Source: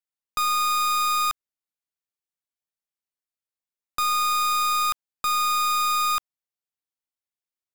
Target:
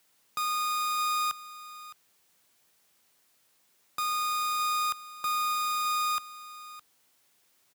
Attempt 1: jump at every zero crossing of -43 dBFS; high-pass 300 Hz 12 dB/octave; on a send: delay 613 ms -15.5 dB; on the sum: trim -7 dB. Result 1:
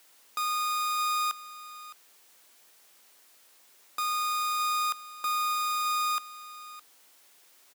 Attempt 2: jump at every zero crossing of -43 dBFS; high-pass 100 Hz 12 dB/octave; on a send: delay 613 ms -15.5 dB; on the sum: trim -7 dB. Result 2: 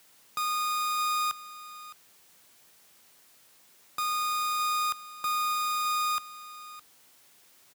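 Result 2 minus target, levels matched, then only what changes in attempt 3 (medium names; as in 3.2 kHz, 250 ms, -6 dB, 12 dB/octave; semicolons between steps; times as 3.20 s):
jump at every zero crossing: distortion +8 dB
change: jump at every zero crossing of -51.5 dBFS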